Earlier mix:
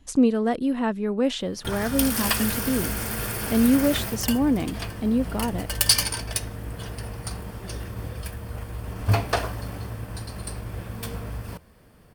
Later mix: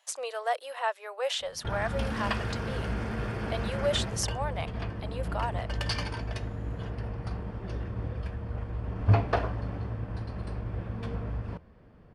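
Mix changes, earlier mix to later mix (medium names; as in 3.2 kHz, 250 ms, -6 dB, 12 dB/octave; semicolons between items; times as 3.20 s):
speech: add steep high-pass 550 Hz 48 dB/octave; background: add tape spacing loss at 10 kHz 32 dB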